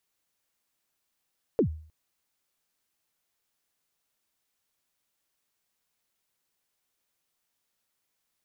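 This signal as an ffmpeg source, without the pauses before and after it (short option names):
-f lavfi -i "aevalsrc='0.15*pow(10,-3*t/0.48)*sin(2*PI*(520*0.093/log(78/520)*(exp(log(78/520)*min(t,0.093)/0.093)-1)+78*max(t-0.093,0)))':d=0.31:s=44100"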